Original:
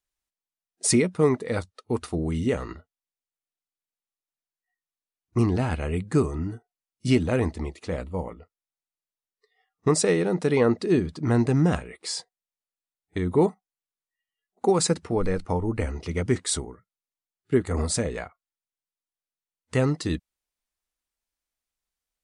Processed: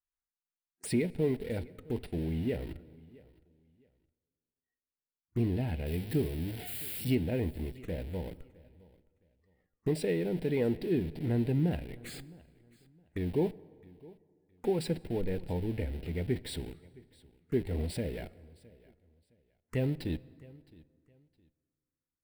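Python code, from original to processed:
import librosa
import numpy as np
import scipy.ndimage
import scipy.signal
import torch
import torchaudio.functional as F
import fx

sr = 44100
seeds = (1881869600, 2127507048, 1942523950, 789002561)

p1 = fx.crossing_spikes(x, sr, level_db=-19.5, at=(5.86, 7.15))
p2 = fx.high_shelf(p1, sr, hz=3800.0, db=-6.5)
p3 = fx.schmitt(p2, sr, flips_db=-38.0)
p4 = p2 + (p3 * 10.0 ** (-7.5 / 20.0))
p5 = fx.env_phaser(p4, sr, low_hz=580.0, high_hz=1200.0, full_db=-25.5)
p6 = p5 + fx.echo_feedback(p5, sr, ms=664, feedback_pct=25, wet_db=-23.0, dry=0)
p7 = fx.rev_plate(p6, sr, seeds[0], rt60_s=2.3, hf_ratio=0.6, predelay_ms=0, drr_db=19.5)
y = p7 * 10.0 ** (-8.5 / 20.0)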